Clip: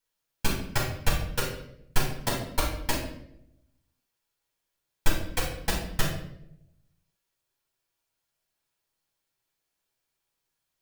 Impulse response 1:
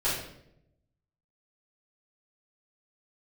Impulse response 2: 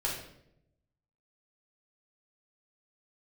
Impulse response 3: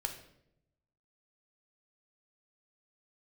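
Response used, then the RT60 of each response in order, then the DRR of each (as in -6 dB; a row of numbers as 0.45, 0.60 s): 2; 0.75, 0.75, 0.75 s; -11.0, -4.5, 4.0 dB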